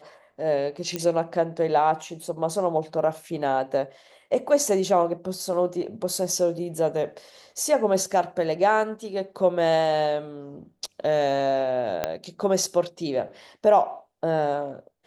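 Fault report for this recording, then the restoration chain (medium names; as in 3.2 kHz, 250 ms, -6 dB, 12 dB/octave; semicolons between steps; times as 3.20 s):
0.96 s: pop -13 dBFS
12.04 s: pop -10 dBFS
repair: de-click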